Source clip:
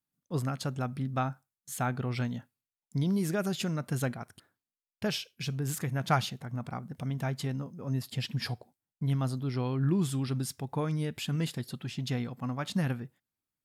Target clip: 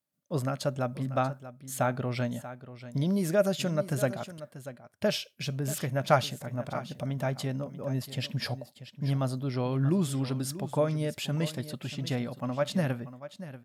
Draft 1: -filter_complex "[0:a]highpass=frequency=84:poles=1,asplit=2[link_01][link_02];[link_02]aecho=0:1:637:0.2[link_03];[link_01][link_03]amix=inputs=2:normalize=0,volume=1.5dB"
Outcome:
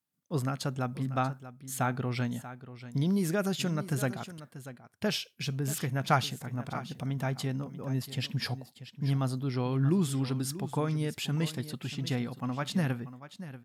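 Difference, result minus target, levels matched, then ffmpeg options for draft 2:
500 Hz band −5.0 dB
-filter_complex "[0:a]highpass=frequency=84:poles=1,equalizer=frequency=590:width_type=o:width=0.21:gain=14.5,asplit=2[link_01][link_02];[link_02]aecho=0:1:637:0.2[link_03];[link_01][link_03]amix=inputs=2:normalize=0,volume=1.5dB"

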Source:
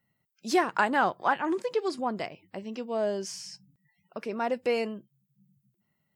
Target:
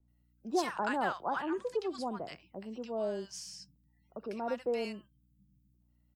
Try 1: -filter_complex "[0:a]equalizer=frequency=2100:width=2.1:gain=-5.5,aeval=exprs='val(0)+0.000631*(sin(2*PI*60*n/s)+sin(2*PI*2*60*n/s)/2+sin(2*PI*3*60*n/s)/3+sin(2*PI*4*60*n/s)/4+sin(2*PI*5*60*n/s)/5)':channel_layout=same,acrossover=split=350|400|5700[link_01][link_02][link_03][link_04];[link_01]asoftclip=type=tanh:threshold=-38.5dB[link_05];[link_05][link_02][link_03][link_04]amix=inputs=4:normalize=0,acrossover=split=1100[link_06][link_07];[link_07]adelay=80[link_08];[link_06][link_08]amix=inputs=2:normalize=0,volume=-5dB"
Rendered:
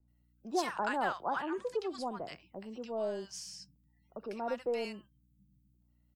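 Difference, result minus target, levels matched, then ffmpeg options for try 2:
soft clipping: distortion +11 dB
-filter_complex "[0:a]equalizer=frequency=2100:width=2.1:gain=-5.5,aeval=exprs='val(0)+0.000631*(sin(2*PI*60*n/s)+sin(2*PI*2*60*n/s)/2+sin(2*PI*3*60*n/s)/3+sin(2*PI*4*60*n/s)/4+sin(2*PI*5*60*n/s)/5)':channel_layout=same,acrossover=split=350|400|5700[link_01][link_02][link_03][link_04];[link_01]asoftclip=type=tanh:threshold=-27dB[link_05];[link_05][link_02][link_03][link_04]amix=inputs=4:normalize=0,acrossover=split=1100[link_06][link_07];[link_07]adelay=80[link_08];[link_06][link_08]amix=inputs=2:normalize=0,volume=-5dB"

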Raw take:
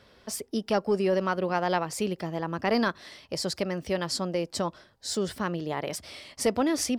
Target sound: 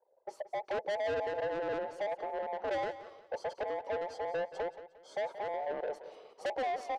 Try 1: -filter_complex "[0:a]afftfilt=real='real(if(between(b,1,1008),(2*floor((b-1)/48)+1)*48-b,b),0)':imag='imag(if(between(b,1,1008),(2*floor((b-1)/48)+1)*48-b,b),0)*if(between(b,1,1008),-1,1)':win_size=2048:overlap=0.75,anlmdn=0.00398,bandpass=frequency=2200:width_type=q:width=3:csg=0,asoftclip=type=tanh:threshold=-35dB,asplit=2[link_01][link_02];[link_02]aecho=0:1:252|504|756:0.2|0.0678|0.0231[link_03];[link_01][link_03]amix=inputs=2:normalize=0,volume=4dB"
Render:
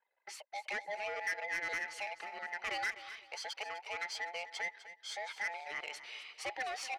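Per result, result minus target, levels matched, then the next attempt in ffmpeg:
500 Hz band −10.5 dB; echo 75 ms late
-filter_complex "[0:a]afftfilt=real='real(if(between(b,1,1008),(2*floor((b-1)/48)+1)*48-b,b),0)':imag='imag(if(between(b,1,1008),(2*floor((b-1)/48)+1)*48-b,b),0)*if(between(b,1,1008),-1,1)':win_size=2048:overlap=0.75,anlmdn=0.00398,bandpass=frequency=550:width_type=q:width=3:csg=0,asoftclip=type=tanh:threshold=-35dB,asplit=2[link_01][link_02];[link_02]aecho=0:1:252|504|756:0.2|0.0678|0.0231[link_03];[link_01][link_03]amix=inputs=2:normalize=0,volume=4dB"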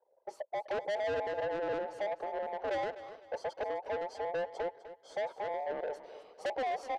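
echo 75 ms late
-filter_complex "[0:a]afftfilt=real='real(if(between(b,1,1008),(2*floor((b-1)/48)+1)*48-b,b),0)':imag='imag(if(between(b,1,1008),(2*floor((b-1)/48)+1)*48-b,b),0)*if(between(b,1,1008),-1,1)':win_size=2048:overlap=0.75,anlmdn=0.00398,bandpass=frequency=550:width_type=q:width=3:csg=0,asoftclip=type=tanh:threshold=-35dB,asplit=2[link_01][link_02];[link_02]aecho=0:1:177|354|531:0.2|0.0678|0.0231[link_03];[link_01][link_03]amix=inputs=2:normalize=0,volume=4dB"

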